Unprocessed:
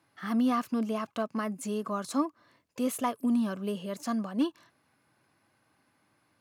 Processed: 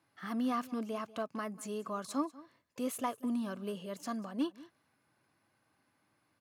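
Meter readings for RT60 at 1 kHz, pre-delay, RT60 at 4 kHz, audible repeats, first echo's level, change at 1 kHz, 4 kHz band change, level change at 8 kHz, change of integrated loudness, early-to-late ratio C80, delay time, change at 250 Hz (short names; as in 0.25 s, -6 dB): none, none, none, 1, -19.5 dB, -5.0 dB, -5.0 dB, -5.0 dB, -6.5 dB, none, 0.191 s, -7.5 dB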